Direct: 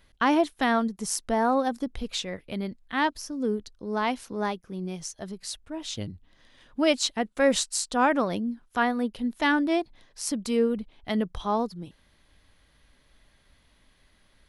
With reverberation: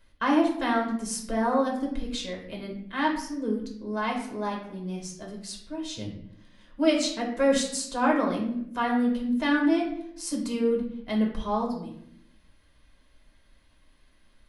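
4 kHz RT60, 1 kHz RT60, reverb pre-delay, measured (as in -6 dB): 0.50 s, 0.65 s, 3 ms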